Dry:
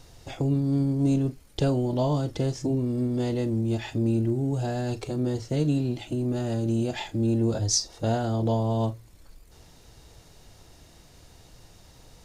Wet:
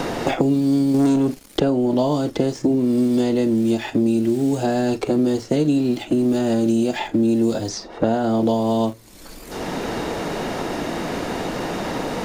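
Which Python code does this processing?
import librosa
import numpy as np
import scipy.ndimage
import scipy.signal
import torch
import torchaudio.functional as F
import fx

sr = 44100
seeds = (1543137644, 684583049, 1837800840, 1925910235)

p1 = fx.leveller(x, sr, passes=2, at=(0.94, 1.6))
p2 = fx.low_shelf_res(p1, sr, hz=160.0, db=-9.5, q=1.5)
p3 = np.where(np.abs(p2) >= 10.0 ** (-37.5 / 20.0), p2, 0.0)
p4 = p2 + (p3 * librosa.db_to_amplitude(-9.0))
p5 = fx.band_squash(p4, sr, depth_pct=100)
y = p5 * librosa.db_to_amplitude(4.0)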